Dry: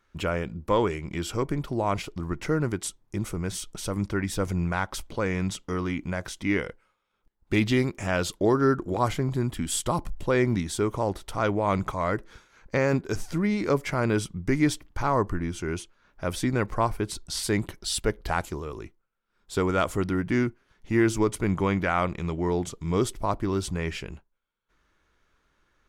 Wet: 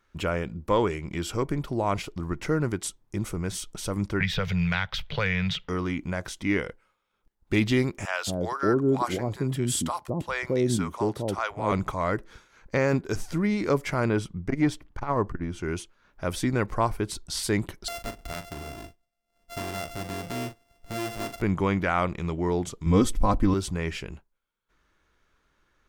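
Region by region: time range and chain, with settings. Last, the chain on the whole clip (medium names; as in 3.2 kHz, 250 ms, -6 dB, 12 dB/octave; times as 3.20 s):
4.20–5.69 s: FFT filter 110 Hz 0 dB, 160 Hz +7 dB, 290 Hz -26 dB, 430 Hz -5 dB, 1.1 kHz -5 dB, 1.7 kHz +6 dB, 3.6 kHz +10 dB, 9.5 kHz -20 dB, 14 kHz -6 dB + three bands compressed up and down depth 100%
8.05–11.72 s: high-pass 93 Hz + bands offset in time highs, lows 220 ms, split 650 Hz
14.09–15.63 s: treble shelf 4.3 kHz -10 dB + transformer saturation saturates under 170 Hz
17.88–21.42 s: sorted samples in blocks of 64 samples + compression 2:1, threshold -37 dBFS + doubling 41 ms -9.5 dB
22.86–23.54 s: bass shelf 190 Hz +11.5 dB + comb 3.9 ms, depth 72%
whole clip: none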